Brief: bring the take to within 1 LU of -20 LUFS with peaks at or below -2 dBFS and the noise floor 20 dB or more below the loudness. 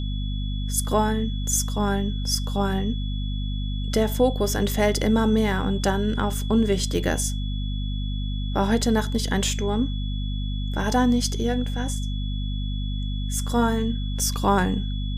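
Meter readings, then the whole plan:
hum 50 Hz; harmonics up to 250 Hz; hum level -24 dBFS; steady tone 3400 Hz; tone level -39 dBFS; loudness -24.5 LUFS; peak -7.0 dBFS; loudness target -20.0 LUFS
-> de-hum 50 Hz, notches 5; notch 3400 Hz, Q 30; gain +4.5 dB

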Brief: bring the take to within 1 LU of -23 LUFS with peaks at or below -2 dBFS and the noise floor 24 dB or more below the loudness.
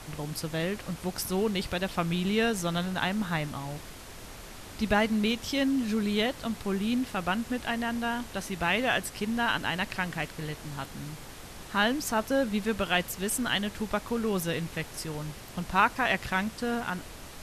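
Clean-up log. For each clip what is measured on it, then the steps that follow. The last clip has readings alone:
noise floor -45 dBFS; noise floor target -54 dBFS; loudness -29.5 LUFS; peak -10.0 dBFS; loudness target -23.0 LUFS
-> noise print and reduce 9 dB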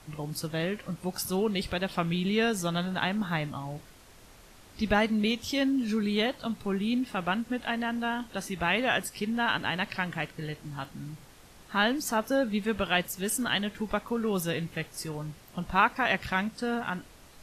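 noise floor -53 dBFS; noise floor target -54 dBFS
-> noise print and reduce 6 dB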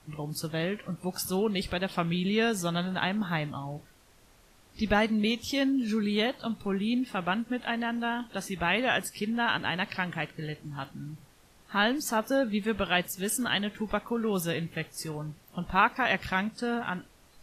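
noise floor -59 dBFS; loudness -29.5 LUFS; peak -10.0 dBFS; loudness target -23.0 LUFS
-> gain +6.5 dB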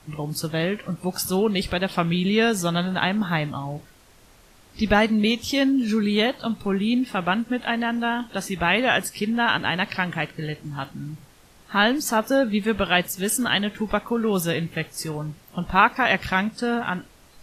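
loudness -23.0 LUFS; peak -3.5 dBFS; noise floor -53 dBFS

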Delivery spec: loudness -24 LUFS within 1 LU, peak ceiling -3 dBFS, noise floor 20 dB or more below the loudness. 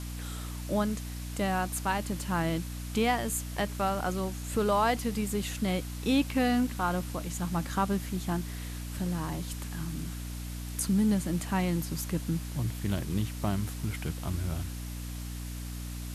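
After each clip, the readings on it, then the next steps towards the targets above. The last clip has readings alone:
hum 60 Hz; harmonics up to 300 Hz; hum level -35 dBFS; noise floor -38 dBFS; noise floor target -52 dBFS; loudness -31.5 LUFS; peak -15.0 dBFS; loudness target -24.0 LUFS
-> de-hum 60 Hz, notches 5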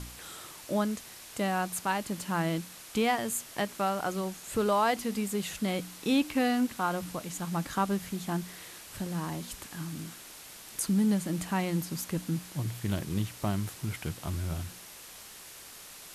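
hum none; noise floor -48 dBFS; noise floor target -52 dBFS
-> denoiser 6 dB, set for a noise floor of -48 dBFS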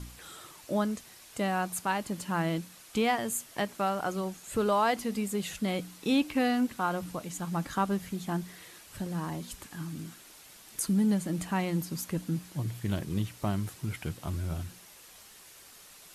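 noise floor -53 dBFS; loudness -32.0 LUFS; peak -15.0 dBFS; loudness target -24.0 LUFS
-> gain +8 dB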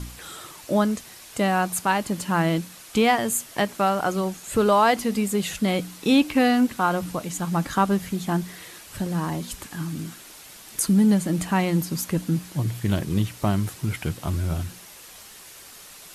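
loudness -24.0 LUFS; peak -7.0 dBFS; noise floor -45 dBFS

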